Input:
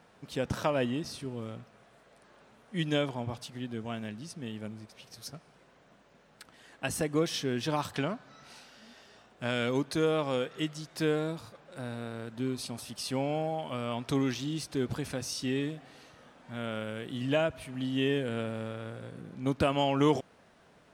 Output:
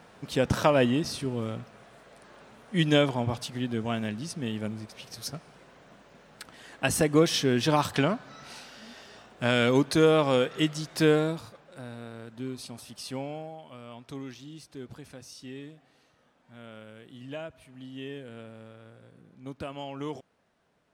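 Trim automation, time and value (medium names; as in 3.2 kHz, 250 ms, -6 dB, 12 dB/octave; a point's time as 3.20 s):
11.14 s +7 dB
11.85 s -3 dB
13.16 s -3 dB
13.60 s -10.5 dB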